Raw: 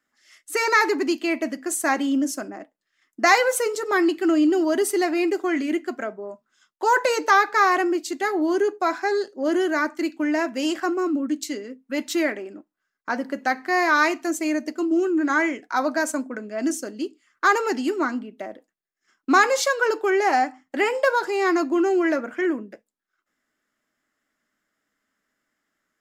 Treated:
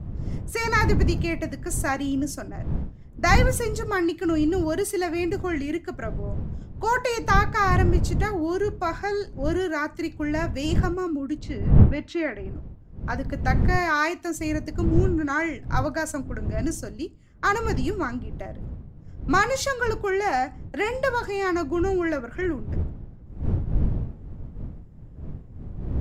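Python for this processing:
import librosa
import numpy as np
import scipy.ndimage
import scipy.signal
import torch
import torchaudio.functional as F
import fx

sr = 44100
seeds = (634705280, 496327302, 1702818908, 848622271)

y = fx.dmg_wind(x, sr, seeds[0], corner_hz=110.0, level_db=-23.0)
y = fx.lowpass(y, sr, hz=3100.0, slope=12, at=(11.38, 12.55))
y = F.gain(torch.from_numpy(y), -4.0).numpy()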